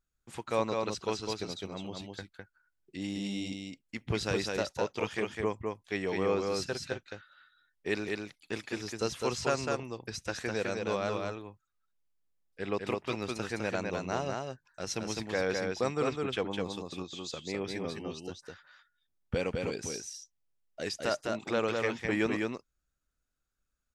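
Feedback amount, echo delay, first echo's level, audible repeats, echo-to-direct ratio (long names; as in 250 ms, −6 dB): repeats not evenly spaced, 206 ms, −3.5 dB, 1, −3.5 dB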